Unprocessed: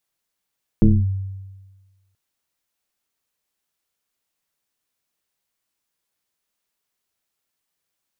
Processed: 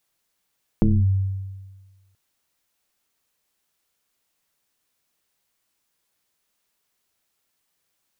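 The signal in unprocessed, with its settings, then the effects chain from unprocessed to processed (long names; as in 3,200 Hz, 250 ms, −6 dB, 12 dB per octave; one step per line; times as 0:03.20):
two-operator FM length 1.33 s, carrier 96.4 Hz, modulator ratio 1.19, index 1.9, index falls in 0.24 s linear, decay 1.35 s, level −7 dB
in parallel at −2 dB: brickwall limiter −17.5 dBFS
on the sum: downward compressor, threshold −16 dBFS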